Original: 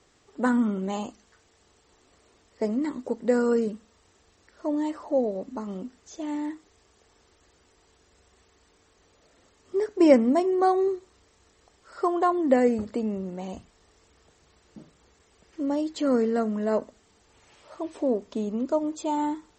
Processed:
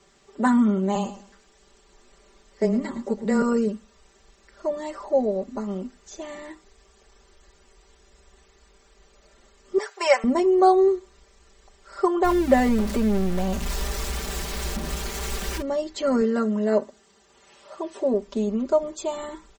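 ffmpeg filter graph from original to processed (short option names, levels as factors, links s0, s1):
-filter_complex "[0:a]asettb=1/sr,asplit=3[s0][s1][s2];[s0]atrim=end=0.954[s3];[s1]atrim=start=0.95:end=3.42,asetpts=PTS-STARTPTS,afade=t=in:d=0.004:c=qsin,afade=t=out:st=2.466:d=0.004:c=qsin,afreqshift=-14,aecho=1:1:110|220|330:0.211|0.055|0.0143,atrim=end_sample=108927[s4];[s2]atrim=start=3.416[s5];[s3][s4]acrossfade=d=0.004:c1=hsin:c2=qsin[s6];[s6][s5]acrossfade=d=0.004:c1=qsin:c2=hsin,asettb=1/sr,asplit=3[s7][s8][s9];[s7]atrim=end=9.784[s10];[s8]atrim=start=9.78:end=10.24,asetpts=PTS-STARTPTS,afade=t=in:d=0.004:c=qsin,afade=t=out:st=0.456:d=0.004:c=qsin,highpass=f=780:w=0.5412,highpass=f=780:w=1.3066,acontrast=44[s11];[s9]atrim=start=10.236[s12];[s10][s11]acrossfade=d=0.004:c1=hsin:c2=qsin[s13];[s13][s12]acrossfade=d=0.004:c1=qsin:c2=hsin,asettb=1/sr,asplit=3[s14][s15][s16];[s14]atrim=end=12.244[s17];[s15]atrim=start=12.24:end=15.62,asetpts=PTS-STARTPTS,afade=t=in:d=0.004:c=qsin,afade=t=out:st=3.376:d=0.004:c=qsin,aeval=exprs='val(0)+0.5*0.0299*sgn(val(0))':c=same,aeval=exprs='val(0)+0.01*(sin(2*PI*60*n/s)+sin(2*PI*2*60*n/s)/2+sin(2*PI*3*60*n/s)/3+sin(2*PI*4*60*n/s)/4+sin(2*PI*5*60*n/s)/5)':c=same[s18];[s16]atrim=start=15.616[s19];[s17][s18]acrossfade=d=0.004:c1=hsin:c2=qsin[s20];[s20][s19]acrossfade=d=0.004:c1=qsin:c2=hsin,asettb=1/sr,asplit=3[s21][s22][s23];[s21]atrim=end=16.214[s24];[s22]atrim=start=16.21:end=18.14,asetpts=PTS-STARTPTS,afade=t=in:d=0.004:c=qsin,afade=t=out:st=1.926:d=0.004:c=qsin,highpass=120,bandreject=f=2300:w=13[s25];[s23]atrim=start=18.136[s26];[s24][s25]acrossfade=d=0.004:c1=hsin:c2=qsin[s27];[s27][s26]acrossfade=d=0.004:c1=qsin:c2=hsin,asubboost=boost=5:cutoff=52,aecho=1:1:5.1:0.88,volume=1.19"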